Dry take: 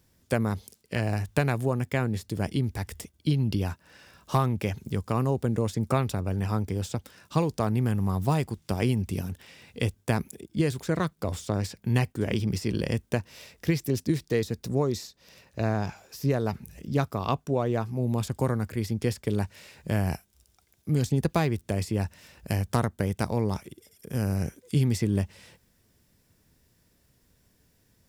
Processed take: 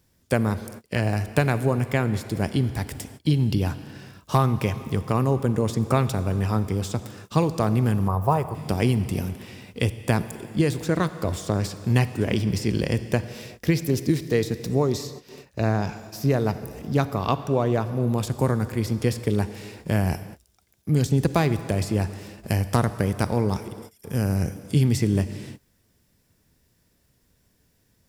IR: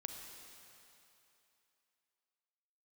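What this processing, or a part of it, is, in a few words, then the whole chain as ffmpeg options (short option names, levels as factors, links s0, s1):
keyed gated reverb: -filter_complex "[0:a]asplit=3[s0][s1][s2];[1:a]atrim=start_sample=2205[s3];[s1][s3]afir=irnorm=-1:irlink=0[s4];[s2]apad=whole_len=1238741[s5];[s4][s5]sidechaingate=range=0.0178:threshold=0.00224:ratio=16:detection=peak,volume=0.891[s6];[s0][s6]amix=inputs=2:normalize=0,asettb=1/sr,asplit=3[s7][s8][s9];[s7]atrim=end=8.084[s10];[s8]atrim=start=8.08:end=8.55,asetpts=PTS-STARTPTS,afade=t=in:d=0.004:c=qsin,afade=t=out:st=0.466:d=0.004:c=qsin,equalizer=f=250:t=o:w=1:g=-12,equalizer=f=500:t=o:w=1:g=4,equalizer=f=1000:t=o:w=1:g=7,equalizer=f=2000:t=o:w=1:g=-5,equalizer=f=4000:t=o:w=1:g=-12,equalizer=f=8000:t=o:w=1:g=-8[s11];[s9]atrim=start=8.546[s12];[s10][s11]acrossfade=d=0.004:c1=hsin:c2=qsin[s13];[s13][s12]acrossfade=d=0.004:c1=qsin:c2=hsin"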